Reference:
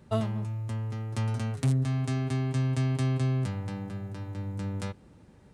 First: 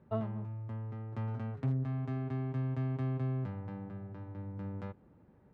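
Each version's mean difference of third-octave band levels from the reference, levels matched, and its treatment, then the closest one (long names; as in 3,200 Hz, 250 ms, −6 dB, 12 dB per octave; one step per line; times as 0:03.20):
3.5 dB: low-pass filter 1,500 Hz 12 dB per octave
low-shelf EQ 73 Hz −7 dB
level −5.5 dB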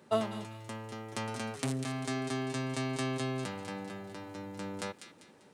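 8.5 dB: high-pass filter 300 Hz 12 dB per octave
on a send: delay with a high-pass on its return 197 ms, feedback 36%, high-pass 2,100 Hz, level −7 dB
on the sum: level +2 dB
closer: first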